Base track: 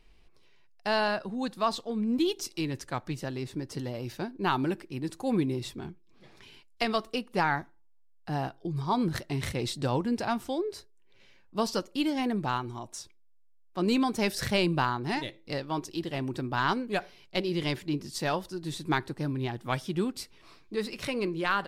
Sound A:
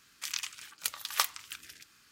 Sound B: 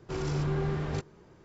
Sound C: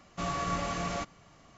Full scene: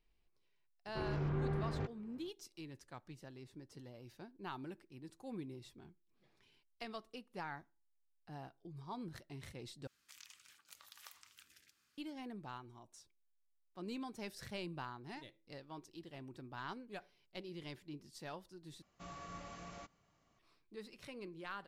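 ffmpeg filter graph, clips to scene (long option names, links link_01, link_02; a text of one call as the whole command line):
ffmpeg -i bed.wav -i cue0.wav -i cue1.wav -i cue2.wav -filter_complex "[0:a]volume=-18.5dB[link_01];[2:a]lowpass=2400[link_02];[1:a]acompressor=threshold=-46dB:ratio=3:attack=13:release=48:knee=1:detection=peak[link_03];[link_01]asplit=3[link_04][link_05][link_06];[link_04]atrim=end=9.874[link_07];[link_03]atrim=end=2.11,asetpts=PTS-STARTPTS,volume=-15.5dB[link_08];[link_05]atrim=start=11.976:end=18.824[link_09];[3:a]atrim=end=1.57,asetpts=PTS-STARTPTS,volume=-17.5dB[link_10];[link_06]atrim=start=20.386[link_11];[link_02]atrim=end=1.44,asetpts=PTS-STARTPTS,volume=-7dB,afade=type=in:duration=0.004:curve=hsin,afade=type=out:start_time=1.436:duration=0.004:curve=hsin,adelay=860[link_12];[link_07][link_08]acrossfade=duration=0.004:curve1=hsin:curve2=hsin[link_13];[link_13][link_09]acrossfade=duration=0.004:curve1=hsin:curve2=hsin[link_14];[link_14][link_10]acrossfade=duration=0.004:curve1=hsin:curve2=hsin[link_15];[link_15][link_11]acrossfade=duration=0.004:curve1=hsin:curve2=hsin[link_16];[link_16][link_12]amix=inputs=2:normalize=0" out.wav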